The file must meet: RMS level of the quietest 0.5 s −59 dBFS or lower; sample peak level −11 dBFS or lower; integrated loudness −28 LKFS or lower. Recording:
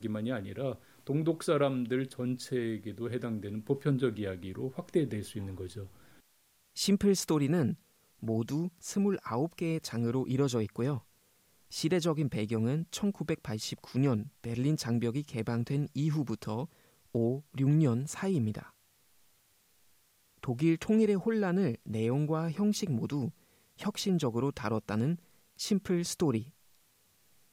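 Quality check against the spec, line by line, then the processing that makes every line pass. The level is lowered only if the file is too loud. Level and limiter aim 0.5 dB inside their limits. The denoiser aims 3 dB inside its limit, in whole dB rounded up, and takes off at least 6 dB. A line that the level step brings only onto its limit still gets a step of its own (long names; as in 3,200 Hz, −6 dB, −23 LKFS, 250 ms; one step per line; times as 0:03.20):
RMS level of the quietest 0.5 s −68 dBFS: in spec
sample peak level −16.0 dBFS: in spec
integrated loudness −32.5 LKFS: in spec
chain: no processing needed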